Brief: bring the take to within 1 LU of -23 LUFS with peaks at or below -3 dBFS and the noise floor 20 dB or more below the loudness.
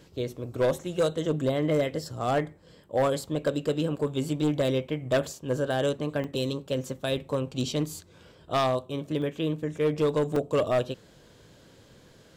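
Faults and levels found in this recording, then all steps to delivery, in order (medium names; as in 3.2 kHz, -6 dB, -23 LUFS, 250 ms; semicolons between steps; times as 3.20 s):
clipped samples 1.0%; clipping level -18.5 dBFS; dropouts 4; longest dropout 2.8 ms; loudness -28.5 LUFS; peak level -18.5 dBFS; loudness target -23.0 LUFS
-> clip repair -18.5 dBFS; interpolate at 3.36/6.24/9.22/10.36 s, 2.8 ms; trim +5.5 dB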